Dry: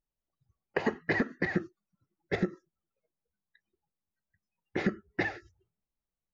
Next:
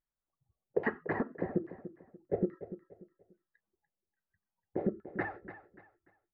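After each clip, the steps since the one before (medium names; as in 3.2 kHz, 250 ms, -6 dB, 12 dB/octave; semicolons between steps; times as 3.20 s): LFO low-pass saw down 1.2 Hz 430–1900 Hz; feedback delay 292 ms, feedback 31%, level -13 dB; trim -5 dB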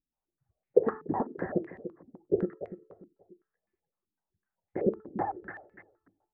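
de-hum 436.5 Hz, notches 28; step-sequenced low-pass 7.9 Hz 270–2100 Hz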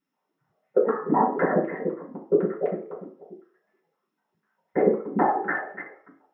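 compression 12:1, threshold -31 dBFS, peak gain reduction 17.5 dB; reverberation RT60 0.45 s, pre-delay 3 ms, DRR -5.5 dB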